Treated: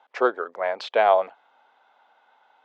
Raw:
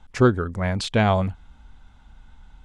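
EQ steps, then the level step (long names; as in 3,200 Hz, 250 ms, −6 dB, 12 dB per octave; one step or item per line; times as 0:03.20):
high-pass filter 460 Hz 24 dB per octave
high-frequency loss of the air 210 metres
parametric band 670 Hz +6.5 dB 1.2 octaves
0.0 dB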